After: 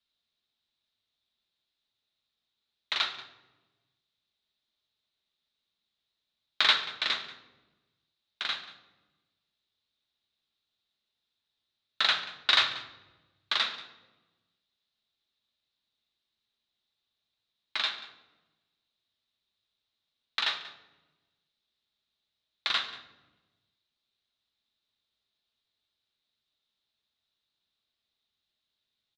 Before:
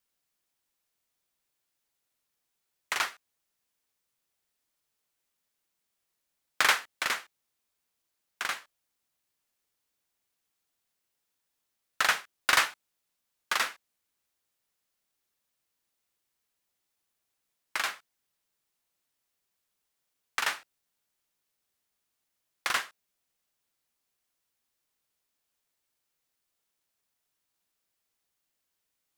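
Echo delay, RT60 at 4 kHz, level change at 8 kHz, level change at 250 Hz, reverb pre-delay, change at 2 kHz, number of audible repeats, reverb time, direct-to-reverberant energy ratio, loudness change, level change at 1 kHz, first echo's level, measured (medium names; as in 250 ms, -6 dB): 185 ms, 0.70 s, -13.0 dB, -2.0 dB, 3 ms, -2.5 dB, 1, 1.1 s, 5.0 dB, +1.0 dB, -3.5 dB, -17.5 dB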